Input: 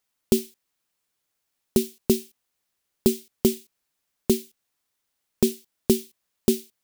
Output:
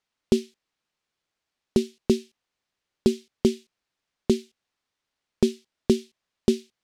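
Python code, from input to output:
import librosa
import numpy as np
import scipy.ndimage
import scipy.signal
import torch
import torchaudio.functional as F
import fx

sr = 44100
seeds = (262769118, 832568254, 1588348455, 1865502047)

y = scipy.signal.sosfilt(scipy.signal.butter(2, 5000.0, 'lowpass', fs=sr, output='sos'), x)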